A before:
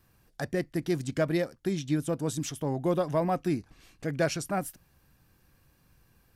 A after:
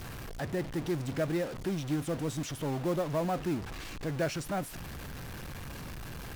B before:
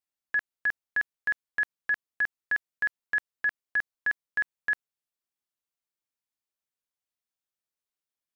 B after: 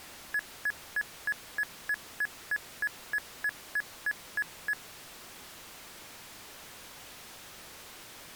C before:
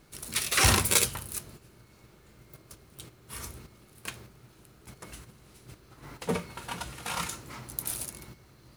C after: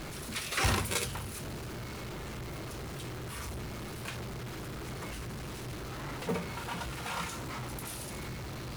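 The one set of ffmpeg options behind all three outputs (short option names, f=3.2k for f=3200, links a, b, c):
-af "aeval=exprs='val(0)+0.5*0.0398*sgn(val(0))':c=same,aemphasis=mode=reproduction:type=cd,acrusher=bits=5:mode=log:mix=0:aa=0.000001,volume=-6.5dB"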